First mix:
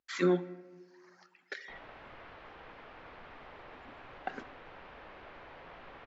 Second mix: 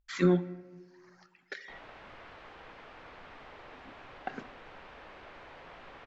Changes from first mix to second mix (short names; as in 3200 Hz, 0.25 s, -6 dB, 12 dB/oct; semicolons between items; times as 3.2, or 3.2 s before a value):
speech: remove HPF 260 Hz 12 dB/oct; background: remove air absorption 120 m